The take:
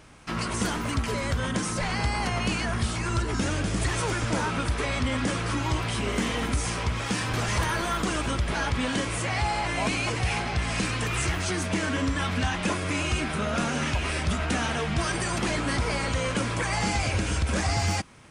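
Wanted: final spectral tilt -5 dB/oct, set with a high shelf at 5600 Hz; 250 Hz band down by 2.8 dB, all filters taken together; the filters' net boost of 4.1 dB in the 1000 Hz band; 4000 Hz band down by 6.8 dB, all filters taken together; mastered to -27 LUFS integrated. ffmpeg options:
-af "equalizer=f=250:t=o:g=-4,equalizer=f=1k:t=o:g=6,equalizer=f=4k:t=o:g=-9,highshelf=f=5.6k:g=-3,volume=0.5dB"

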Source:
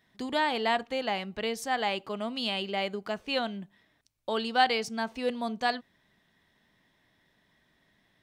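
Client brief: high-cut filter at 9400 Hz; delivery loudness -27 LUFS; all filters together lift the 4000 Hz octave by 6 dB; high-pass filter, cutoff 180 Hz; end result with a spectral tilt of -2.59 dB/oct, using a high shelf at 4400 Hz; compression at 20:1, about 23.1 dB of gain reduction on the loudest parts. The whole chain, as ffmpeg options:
-af "highpass=180,lowpass=9.4k,equalizer=f=4k:t=o:g=6,highshelf=f=4.4k:g=4.5,acompressor=threshold=-39dB:ratio=20,volume=16.5dB"

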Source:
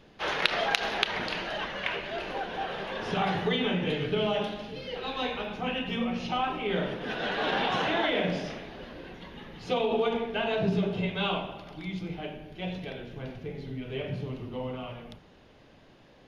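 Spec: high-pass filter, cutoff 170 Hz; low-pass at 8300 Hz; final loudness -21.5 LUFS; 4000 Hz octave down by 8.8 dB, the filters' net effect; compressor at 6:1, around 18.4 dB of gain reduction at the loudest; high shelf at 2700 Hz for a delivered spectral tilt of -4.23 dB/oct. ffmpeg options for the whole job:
-af "highpass=170,lowpass=8.3k,highshelf=f=2.7k:g=-7,equalizer=f=4k:t=o:g=-6.5,acompressor=threshold=-45dB:ratio=6,volume=26dB"

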